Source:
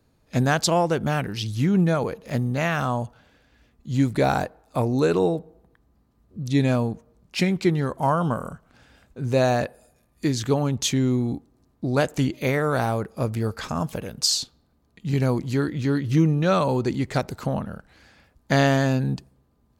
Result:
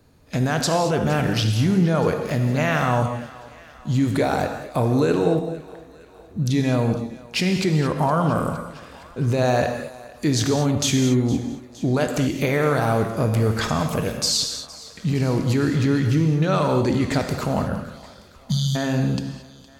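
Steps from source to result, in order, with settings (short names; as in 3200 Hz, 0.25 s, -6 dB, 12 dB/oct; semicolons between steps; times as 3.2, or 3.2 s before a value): spectral delete 17.75–18.76, 240–3000 Hz; in parallel at -2 dB: negative-ratio compressor -28 dBFS; on the sum: limiter -12 dBFS, peak gain reduction 5.5 dB; thinning echo 0.463 s, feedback 63%, high-pass 390 Hz, level -19 dB; non-linear reverb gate 0.25 s flat, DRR 4.5 dB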